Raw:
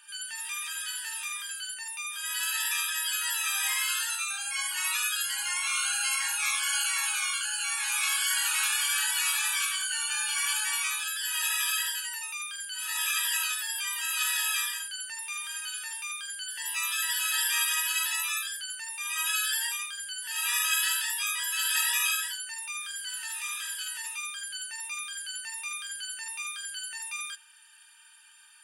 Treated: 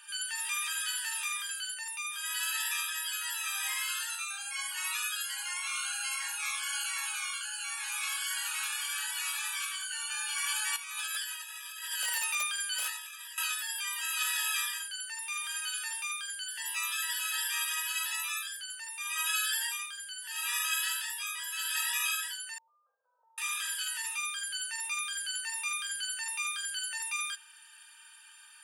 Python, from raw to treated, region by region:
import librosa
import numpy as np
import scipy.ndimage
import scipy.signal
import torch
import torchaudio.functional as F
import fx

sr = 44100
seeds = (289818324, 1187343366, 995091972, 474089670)

y = fx.chain(x, sr, fx.echo_feedback(ms=248, feedback_pct=37, wet_db=-18.0),
    fx.over_compress(threshold_db=-35.0, ratio=-0.5),
    fx.overflow_wrap(gain_db=22.5), at=(10.76, 13.38))
y = fx.chain(y, sr, fx.gaussian_blur(sigma=15.0),
    fx.env_flatten(amount_pct=50), at=(22.58, 23.38))
y = scipy.signal.sosfilt(scipy.signal.cheby1(8, 1.0, 460.0, 'highpass', fs=sr, output='sos'), y)
y = fx.peak_eq(y, sr, hz=1200.0, db=2.5, octaves=0.36)
y = fx.rider(y, sr, range_db=10, speed_s=2.0)
y = y * 10.0 ** (-4.0 / 20.0)